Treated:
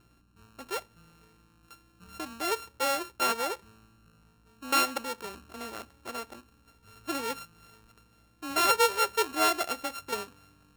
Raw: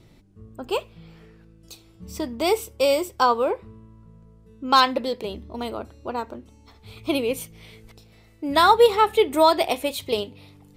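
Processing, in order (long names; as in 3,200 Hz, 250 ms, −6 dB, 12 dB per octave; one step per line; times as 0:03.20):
samples sorted by size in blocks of 32 samples
mains hum 60 Hz, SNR 28 dB
low-shelf EQ 220 Hz −8 dB
level −8.5 dB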